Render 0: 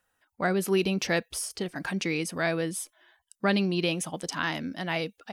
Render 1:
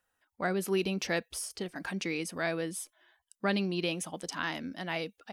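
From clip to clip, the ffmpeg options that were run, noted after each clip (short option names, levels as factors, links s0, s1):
-af "equalizer=f=140:t=o:w=0.22:g=-12.5,volume=0.596"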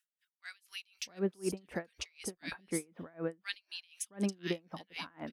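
-filter_complex "[0:a]acrossover=split=1900[s0][s1];[s0]adelay=670[s2];[s2][s1]amix=inputs=2:normalize=0,aeval=exprs='val(0)*pow(10,-32*(0.5-0.5*cos(2*PI*4*n/s))/20)':c=same,volume=1.26"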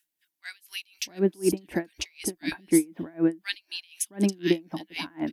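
-af "equalizer=f=315:t=o:w=0.33:g=12,equalizer=f=500:t=o:w=0.33:g=-8,equalizer=f=1250:t=o:w=0.33:g=-10,equalizer=f=12500:t=o:w=0.33:g=9,volume=2.66"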